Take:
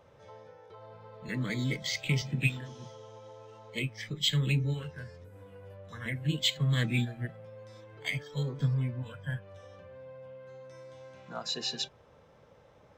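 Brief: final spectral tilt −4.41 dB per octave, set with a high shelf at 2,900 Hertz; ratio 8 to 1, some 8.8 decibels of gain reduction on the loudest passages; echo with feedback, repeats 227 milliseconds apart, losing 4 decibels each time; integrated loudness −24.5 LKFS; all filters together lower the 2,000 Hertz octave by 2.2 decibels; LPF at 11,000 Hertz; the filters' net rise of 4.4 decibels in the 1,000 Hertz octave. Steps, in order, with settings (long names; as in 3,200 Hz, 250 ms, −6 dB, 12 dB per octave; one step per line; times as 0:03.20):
low-pass filter 11,000 Hz
parametric band 1,000 Hz +6.5 dB
parametric band 2,000 Hz −7 dB
high-shelf EQ 2,900 Hz +6.5 dB
downward compressor 8 to 1, threshold −31 dBFS
repeating echo 227 ms, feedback 63%, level −4 dB
level +11.5 dB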